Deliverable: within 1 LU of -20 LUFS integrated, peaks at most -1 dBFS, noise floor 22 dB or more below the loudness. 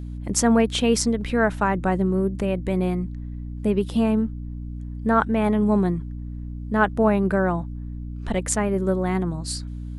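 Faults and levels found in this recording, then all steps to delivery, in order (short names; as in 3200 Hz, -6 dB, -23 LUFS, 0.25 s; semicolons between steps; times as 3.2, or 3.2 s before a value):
hum 60 Hz; harmonics up to 300 Hz; hum level -30 dBFS; loudness -22.5 LUFS; peak -4.5 dBFS; loudness target -20.0 LUFS
-> notches 60/120/180/240/300 Hz; gain +2.5 dB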